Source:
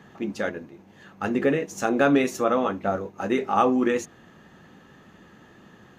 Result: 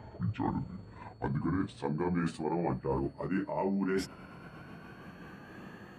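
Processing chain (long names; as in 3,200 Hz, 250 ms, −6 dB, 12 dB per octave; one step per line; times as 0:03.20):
pitch glide at a constant tempo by −12 semitones ending unshifted
reversed playback
downward compressor 12 to 1, threshold −32 dBFS, peak gain reduction 17 dB
reversed playback
steady tone 4,400 Hz −66 dBFS
flat-topped bell 4,700 Hz −9 dB 1.1 octaves
level +3.5 dB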